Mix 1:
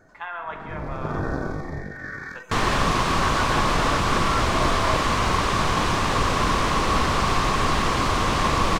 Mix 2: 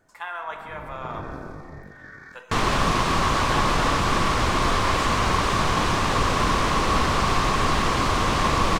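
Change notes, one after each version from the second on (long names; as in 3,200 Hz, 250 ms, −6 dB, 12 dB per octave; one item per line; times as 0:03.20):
speech: remove low-pass filter 3,200 Hz 12 dB per octave
first sound −9.0 dB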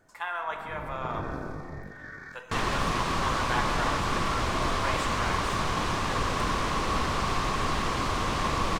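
first sound: send on
second sound −6.5 dB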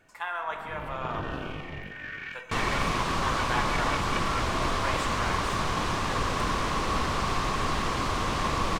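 first sound: remove Butterworth band-reject 2,800 Hz, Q 0.9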